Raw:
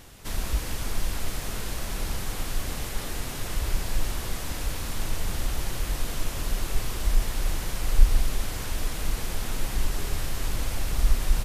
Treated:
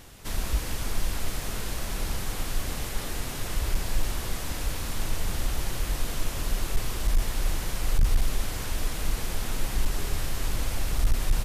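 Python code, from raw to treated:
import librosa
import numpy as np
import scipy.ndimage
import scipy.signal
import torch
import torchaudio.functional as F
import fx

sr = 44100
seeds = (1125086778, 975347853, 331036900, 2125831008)

y = np.clip(10.0 ** (15.0 / 20.0) * x, -1.0, 1.0) / 10.0 ** (15.0 / 20.0)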